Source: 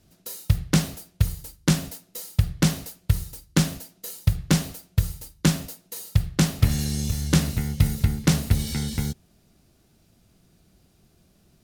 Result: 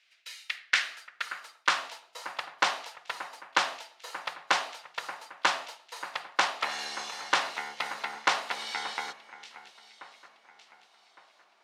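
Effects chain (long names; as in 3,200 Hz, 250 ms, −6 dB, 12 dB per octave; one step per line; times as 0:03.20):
band-pass filter 320–3,400 Hz
delay that swaps between a low-pass and a high-pass 580 ms, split 2,400 Hz, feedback 60%, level −13.5 dB
high-pass filter sweep 2,200 Hz → 920 Hz, 0:00.40–0:02.04
level +3.5 dB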